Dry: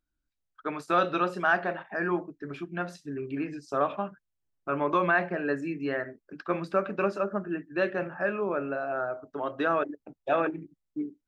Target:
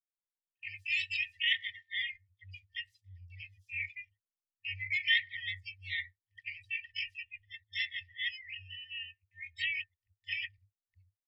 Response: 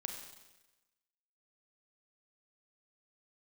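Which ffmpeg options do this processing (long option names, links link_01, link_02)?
-filter_complex "[0:a]asplit=4[link_01][link_02][link_03][link_04];[link_02]asetrate=29433,aresample=44100,atempo=1.49831,volume=-5dB[link_05];[link_03]asetrate=52444,aresample=44100,atempo=0.840896,volume=-3dB[link_06];[link_04]asetrate=88200,aresample=44100,atempo=0.5,volume=-5dB[link_07];[link_01][link_05][link_06][link_07]amix=inputs=4:normalize=0,afftdn=noise_reduction=28:noise_floor=-36,agate=range=-10dB:threshold=-46dB:ratio=16:detection=peak,afftfilt=real='re*(1-between(b*sr/4096,100,1800))':imag='im*(1-between(b*sr/4096,100,1800))':win_size=4096:overlap=0.75"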